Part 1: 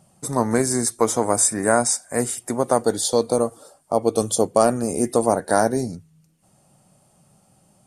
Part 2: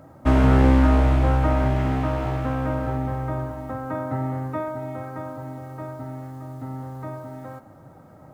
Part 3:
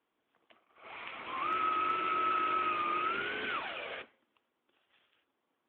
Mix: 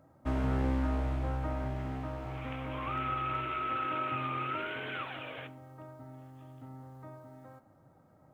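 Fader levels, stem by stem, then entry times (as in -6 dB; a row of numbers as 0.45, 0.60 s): off, -14.5 dB, -3.0 dB; off, 0.00 s, 1.45 s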